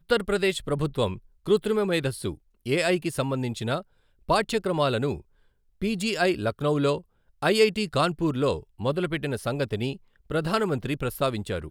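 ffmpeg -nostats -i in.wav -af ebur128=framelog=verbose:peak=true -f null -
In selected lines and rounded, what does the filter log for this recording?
Integrated loudness:
  I:         -26.4 LUFS
  Threshold: -36.7 LUFS
Loudness range:
  LRA:         2.8 LU
  Threshold: -46.7 LUFS
  LRA low:   -28.0 LUFS
  LRA high:  -25.2 LUFS
True peak:
  Peak:       -7.8 dBFS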